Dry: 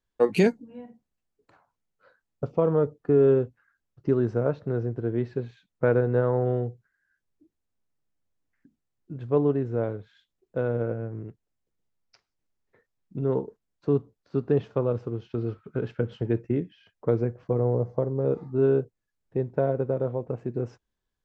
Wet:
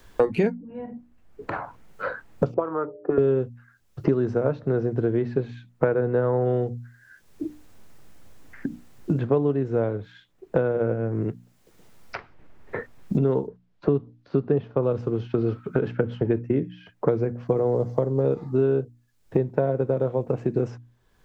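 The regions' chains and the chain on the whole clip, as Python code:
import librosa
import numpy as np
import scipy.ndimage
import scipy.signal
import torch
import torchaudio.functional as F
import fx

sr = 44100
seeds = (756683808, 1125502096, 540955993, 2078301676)

y = fx.chain(x, sr, fx.peak_eq(hz=320.0, db=11.0, octaves=0.33),
    fx.hum_notches(base_hz=60, count=10),
    fx.auto_wah(base_hz=370.0, top_hz=1300.0, q=2.4, full_db=-15.5, direction='up'), at=(2.54, 3.18))
y = fx.chain(y, sr, fx.lowpass(hz=4100.0, slope=12),
    fx.high_shelf(hz=2400.0, db=-10.0), at=(13.47, 14.83))
y = fx.hum_notches(y, sr, base_hz=60, count=5)
y = fx.band_squash(y, sr, depth_pct=100)
y = y * librosa.db_to_amplitude(3.0)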